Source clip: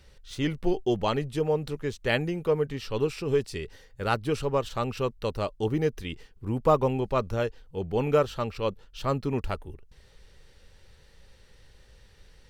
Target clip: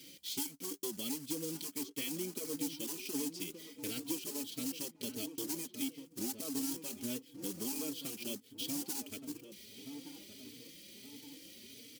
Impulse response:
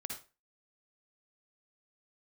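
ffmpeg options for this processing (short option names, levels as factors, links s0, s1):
-filter_complex "[0:a]asplit=2[s0][s1];[s1]alimiter=limit=0.106:level=0:latency=1:release=73,volume=1.19[s2];[s0][s2]amix=inputs=2:normalize=0,asplit=3[s3][s4][s5];[s3]bandpass=f=270:t=q:w=8,volume=1[s6];[s4]bandpass=f=2290:t=q:w=8,volume=0.501[s7];[s5]bandpass=f=3010:t=q:w=8,volume=0.355[s8];[s6][s7][s8]amix=inputs=3:normalize=0,equalizer=f=1600:t=o:w=0.53:g=-8,acrusher=bits=3:mode=log:mix=0:aa=0.000001,acrossover=split=1800[s9][s10];[s9]asoftclip=type=tanh:threshold=0.0299[s11];[s11][s10]amix=inputs=2:normalize=0,highpass=130,equalizer=f=3500:t=o:w=0.41:g=-9.5,asetrate=45938,aresample=44100,aexciter=amount=4.5:drive=6:freq=3300,acompressor=threshold=0.00282:ratio=4,asplit=2[s12][s13];[s13]adelay=1171,lowpass=f=1400:p=1,volume=0.335,asplit=2[s14][s15];[s15]adelay=1171,lowpass=f=1400:p=1,volume=0.52,asplit=2[s16][s17];[s17]adelay=1171,lowpass=f=1400:p=1,volume=0.52,asplit=2[s18][s19];[s19]adelay=1171,lowpass=f=1400:p=1,volume=0.52,asplit=2[s20][s21];[s21]adelay=1171,lowpass=f=1400:p=1,volume=0.52,asplit=2[s22][s23];[s23]adelay=1171,lowpass=f=1400:p=1,volume=0.52[s24];[s12][s14][s16][s18][s20][s22][s24]amix=inputs=7:normalize=0,asplit=2[s25][s26];[s26]adelay=3.9,afreqshift=1.5[s27];[s25][s27]amix=inputs=2:normalize=1,volume=5.31"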